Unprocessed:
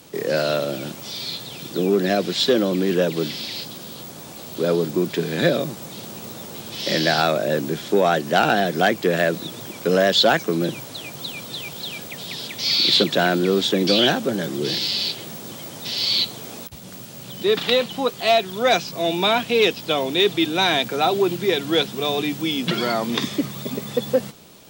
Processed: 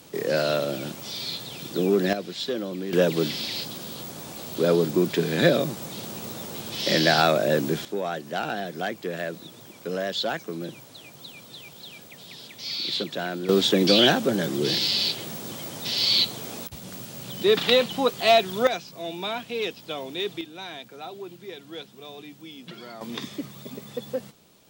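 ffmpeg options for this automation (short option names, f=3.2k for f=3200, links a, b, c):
-af "asetnsamples=n=441:p=0,asendcmd='2.13 volume volume -11dB;2.93 volume volume -0.5dB;7.85 volume volume -11.5dB;13.49 volume volume -0.5dB;18.67 volume volume -11.5dB;20.41 volume volume -19dB;23.01 volume volume -10.5dB',volume=-2.5dB"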